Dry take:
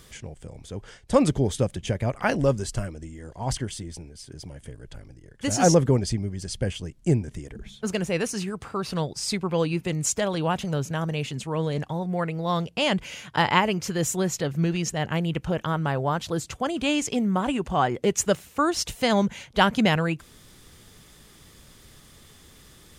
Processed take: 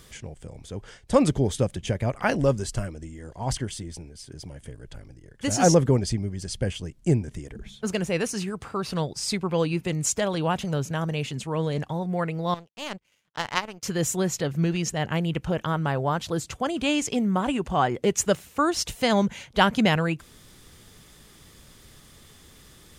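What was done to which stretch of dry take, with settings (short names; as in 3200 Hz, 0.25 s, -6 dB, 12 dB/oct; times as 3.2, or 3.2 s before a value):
12.54–13.83 power-law curve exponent 2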